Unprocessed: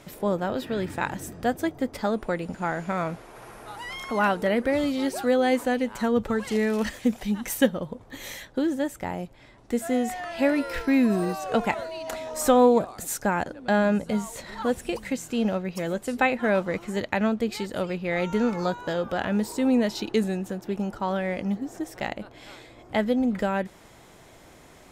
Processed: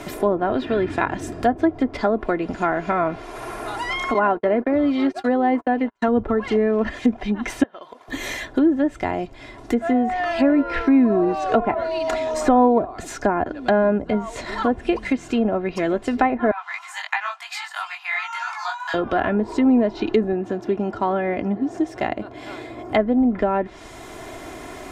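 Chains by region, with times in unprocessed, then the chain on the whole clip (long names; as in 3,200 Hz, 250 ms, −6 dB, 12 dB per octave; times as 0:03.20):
0:04.14–0:06.08: noise gate −31 dBFS, range −46 dB + low-shelf EQ 120 Hz −11 dB
0:07.63–0:08.08: high-pass filter 790 Hz + parametric band 8,300 Hz −9 dB 0.78 octaves + downward compressor 3 to 1, threshold −41 dBFS
0:16.51–0:18.94: Butterworth high-pass 800 Hz 72 dB per octave + chorus effect 2.9 Hz, delay 17.5 ms, depth 3 ms
0:20.32–0:22.95: high-pass filter 78 Hz + high-shelf EQ 2,100 Hz −9.5 dB
whole clip: treble cut that deepens with the level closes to 1,100 Hz, closed at −21 dBFS; comb filter 2.9 ms, depth 56%; multiband upward and downward compressor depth 40%; level +6 dB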